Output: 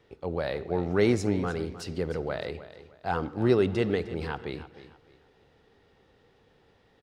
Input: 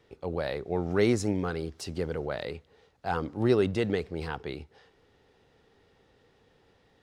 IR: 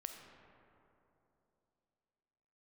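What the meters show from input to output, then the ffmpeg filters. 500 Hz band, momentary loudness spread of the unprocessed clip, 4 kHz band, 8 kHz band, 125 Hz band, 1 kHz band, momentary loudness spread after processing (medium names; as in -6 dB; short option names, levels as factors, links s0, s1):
+1.5 dB, 14 LU, 0.0 dB, no reading, +1.5 dB, +1.0 dB, 15 LU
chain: -filter_complex "[0:a]aecho=1:1:307|614|921:0.188|0.0546|0.0158,asplit=2[s0][s1];[1:a]atrim=start_sample=2205,afade=t=out:st=0.22:d=0.01,atrim=end_sample=10143,lowpass=5800[s2];[s1][s2]afir=irnorm=-1:irlink=0,volume=0.841[s3];[s0][s3]amix=inputs=2:normalize=0,volume=0.75"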